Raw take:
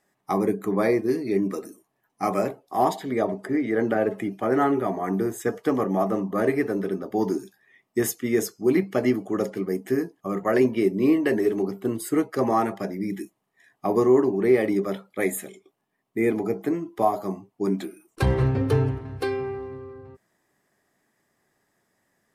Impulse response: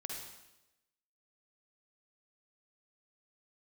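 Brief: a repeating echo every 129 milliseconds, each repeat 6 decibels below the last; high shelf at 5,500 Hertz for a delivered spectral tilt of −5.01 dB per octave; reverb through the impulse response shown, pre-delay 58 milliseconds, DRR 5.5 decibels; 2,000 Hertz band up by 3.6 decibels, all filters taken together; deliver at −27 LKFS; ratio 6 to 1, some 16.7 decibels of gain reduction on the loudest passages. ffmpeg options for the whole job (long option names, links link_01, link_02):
-filter_complex "[0:a]equalizer=frequency=2000:width_type=o:gain=3.5,highshelf=frequency=5500:gain=6.5,acompressor=threshold=-33dB:ratio=6,aecho=1:1:129|258|387|516|645|774:0.501|0.251|0.125|0.0626|0.0313|0.0157,asplit=2[link_01][link_02];[1:a]atrim=start_sample=2205,adelay=58[link_03];[link_02][link_03]afir=irnorm=-1:irlink=0,volume=-4.5dB[link_04];[link_01][link_04]amix=inputs=2:normalize=0,volume=7.5dB"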